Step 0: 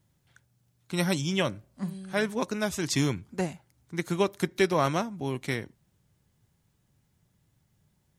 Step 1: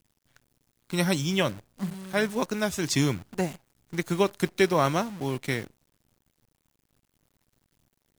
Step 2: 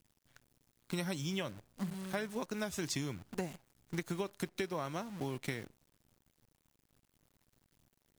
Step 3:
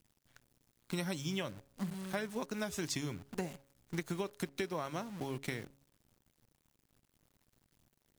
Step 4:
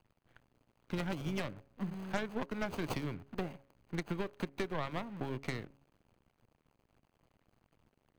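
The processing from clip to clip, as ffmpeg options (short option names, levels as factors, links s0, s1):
-filter_complex "[0:a]asplit=2[s0][s1];[s1]aeval=exprs='sgn(val(0))*max(abs(val(0))-0.0112,0)':c=same,volume=0.282[s2];[s0][s2]amix=inputs=2:normalize=0,acrusher=bits=8:dc=4:mix=0:aa=0.000001"
-af "acompressor=threshold=0.0282:ratio=16,volume=0.75"
-af "bandreject=f=138.4:t=h:w=4,bandreject=f=276.8:t=h:w=4,bandreject=f=415.2:t=h:w=4,bandreject=f=553.6:t=h:w=4"
-filter_complex "[0:a]aeval=exprs='if(lt(val(0),0),0.708*val(0),val(0))':c=same,acrossover=split=410|3200[s0][s1][s2];[s1]aeval=exprs='0.0501*(cos(1*acos(clip(val(0)/0.0501,-1,1)))-cos(1*PI/2))+0.0112*(cos(6*acos(clip(val(0)/0.0501,-1,1)))-cos(6*PI/2))':c=same[s3];[s2]acrusher=samples=24:mix=1:aa=0.000001[s4];[s0][s3][s4]amix=inputs=3:normalize=0,volume=1.19"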